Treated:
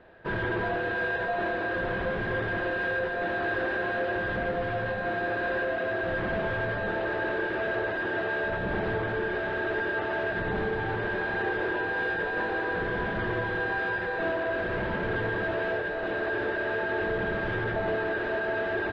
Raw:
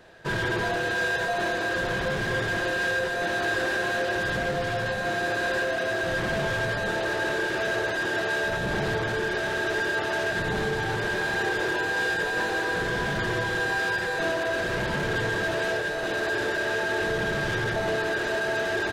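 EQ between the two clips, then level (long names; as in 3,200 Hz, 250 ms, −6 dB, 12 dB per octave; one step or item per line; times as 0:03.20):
high-frequency loss of the air 450 metres
parametric band 140 Hz −12 dB 0.23 octaves
0.0 dB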